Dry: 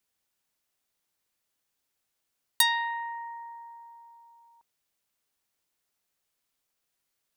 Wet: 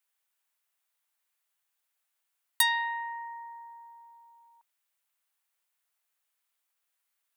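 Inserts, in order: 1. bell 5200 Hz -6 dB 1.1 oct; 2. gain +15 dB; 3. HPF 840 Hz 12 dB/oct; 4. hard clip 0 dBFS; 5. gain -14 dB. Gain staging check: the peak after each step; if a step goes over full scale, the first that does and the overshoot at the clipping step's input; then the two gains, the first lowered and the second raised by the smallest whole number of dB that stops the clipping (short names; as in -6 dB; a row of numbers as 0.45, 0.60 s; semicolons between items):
-6.5, +8.5, +7.5, 0.0, -14.0 dBFS; step 2, 7.5 dB; step 2 +7 dB, step 5 -6 dB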